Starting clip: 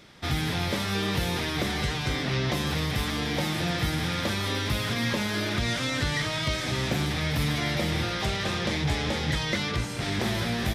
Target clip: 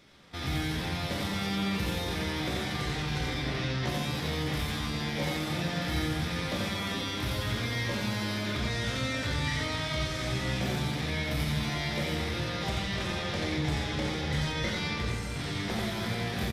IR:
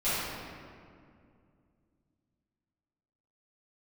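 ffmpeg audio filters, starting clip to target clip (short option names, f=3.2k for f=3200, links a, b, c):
-filter_complex "[0:a]atempo=0.65,aecho=1:1:32.07|87.46:0.282|0.708,asplit=2[a][b];[1:a]atrim=start_sample=2205[c];[b][c]afir=irnorm=-1:irlink=0,volume=-14dB[d];[a][d]amix=inputs=2:normalize=0,volume=-8dB"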